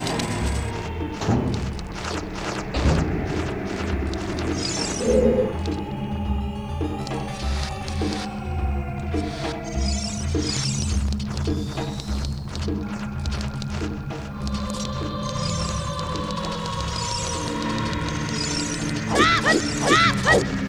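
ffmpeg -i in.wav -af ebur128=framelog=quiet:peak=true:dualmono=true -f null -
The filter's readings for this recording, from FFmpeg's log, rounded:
Integrated loudness:
  I:         -21.6 LUFS
  Threshold: -31.6 LUFS
Loudness range:
  LRA:         5.4 LU
  Threshold: -42.5 LUFS
  LRA low:   -24.9 LUFS
  LRA high:  -19.5 LUFS
True peak:
  Peak:       -5.2 dBFS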